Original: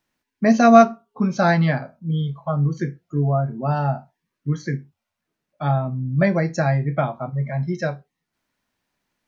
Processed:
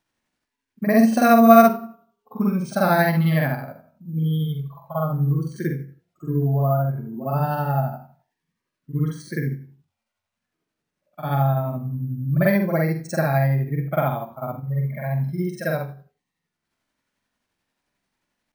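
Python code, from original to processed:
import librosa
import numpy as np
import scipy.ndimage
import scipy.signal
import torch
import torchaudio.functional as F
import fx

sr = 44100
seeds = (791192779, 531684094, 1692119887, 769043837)

y = np.repeat(x[::3], 3)[:len(x)]
y = fx.stretch_grains(y, sr, factor=2.0, grain_ms=177.0)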